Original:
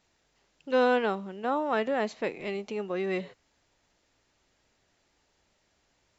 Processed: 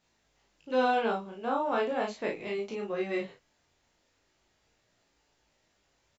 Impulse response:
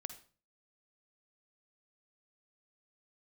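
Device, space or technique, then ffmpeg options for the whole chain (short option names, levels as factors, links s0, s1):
double-tracked vocal: -filter_complex "[0:a]asettb=1/sr,asplit=3[s0][s1][s2];[s0]atrim=end=0.734[s3];[s1]atrim=start=0.73:end=2.1,asetpts=PTS-STARTPTS,afade=t=in:d=0.004:c=qsin,afade=t=out:st=1.366:d=0.004:c=qsin,bandreject=f=1900:w=6.4[s4];[s2]atrim=start=2.096[s5];[s3][s4]acrossfade=d=0.004:c1=hsin:c2=qsin[s6];[s6][s5]acrossfade=d=0.004:c1=qsin:c2=hsin,asplit=2[s7][s8];[s8]adelay=35,volume=0.75[s9];[s7][s9]amix=inputs=2:normalize=0,flanger=delay=18:depth=4.4:speed=0.38"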